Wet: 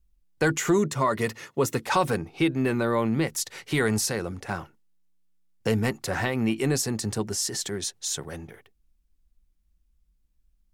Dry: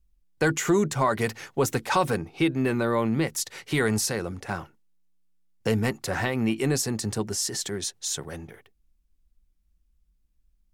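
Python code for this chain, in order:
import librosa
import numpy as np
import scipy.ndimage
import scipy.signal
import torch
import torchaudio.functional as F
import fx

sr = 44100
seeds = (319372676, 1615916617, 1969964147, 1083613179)

y = fx.notch_comb(x, sr, f0_hz=780.0, at=(0.78, 1.86))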